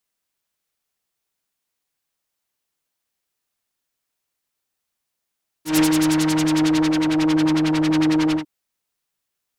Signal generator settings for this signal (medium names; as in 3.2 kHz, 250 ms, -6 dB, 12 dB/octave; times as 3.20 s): synth patch with filter wobble D#4, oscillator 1 triangle, interval -12 st, oscillator 2 level -9.5 dB, sub -27 dB, noise -4 dB, filter lowpass, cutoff 880 Hz, Q 1.1, filter envelope 2.5 oct, filter decay 1.39 s, filter sustain 35%, attack 143 ms, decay 0.08 s, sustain -4.5 dB, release 0.10 s, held 2.70 s, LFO 11 Hz, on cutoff 1.5 oct